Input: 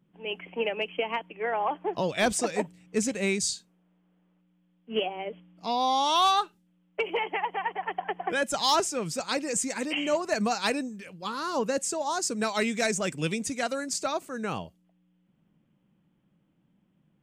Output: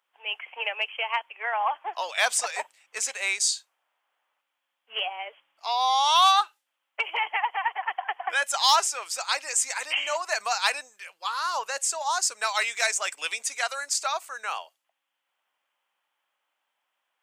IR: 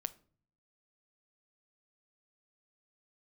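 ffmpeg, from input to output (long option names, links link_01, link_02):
-af "highpass=frequency=800:width=0.5412,highpass=frequency=800:width=1.3066,volume=5dB"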